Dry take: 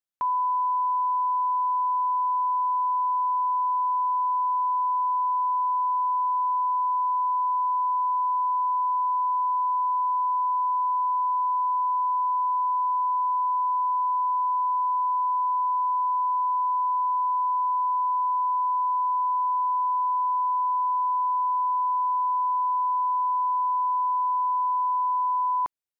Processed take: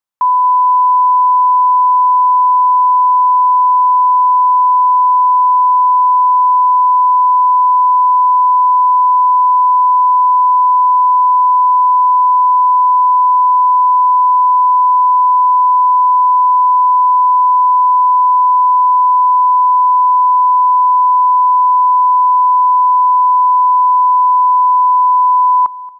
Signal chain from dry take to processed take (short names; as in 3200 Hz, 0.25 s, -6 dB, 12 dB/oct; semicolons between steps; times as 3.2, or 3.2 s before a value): bell 1000 Hz +10.5 dB; feedback echo 0.228 s, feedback 36%, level -20 dB; gain +3.5 dB